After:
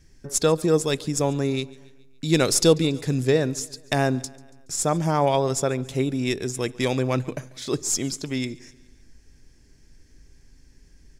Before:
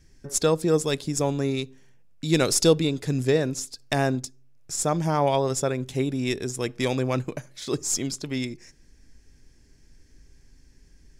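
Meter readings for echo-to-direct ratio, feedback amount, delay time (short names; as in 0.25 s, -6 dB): -21.5 dB, 56%, 0.141 s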